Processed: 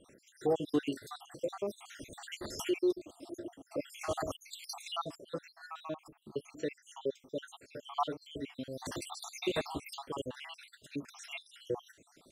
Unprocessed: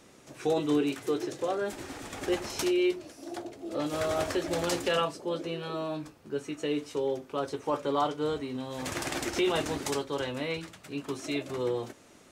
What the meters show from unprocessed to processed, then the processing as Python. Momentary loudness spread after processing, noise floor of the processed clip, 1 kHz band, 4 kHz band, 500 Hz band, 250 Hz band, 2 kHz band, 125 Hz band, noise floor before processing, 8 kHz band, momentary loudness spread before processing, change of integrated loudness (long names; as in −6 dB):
13 LU, −68 dBFS, −7.0 dB, −7.0 dB, −7.5 dB, −7.5 dB, −9.5 dB, −8.5 dB, −56 dBFS, −7.5 dB, 10 LU, −7.5 dB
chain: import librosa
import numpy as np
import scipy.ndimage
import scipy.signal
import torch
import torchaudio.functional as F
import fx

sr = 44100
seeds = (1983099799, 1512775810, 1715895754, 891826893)

y = fx.spec_dropout(x, sr, seeds[0], share_pct=70)
y = y * librosa.db_to_amplitude(-2.0)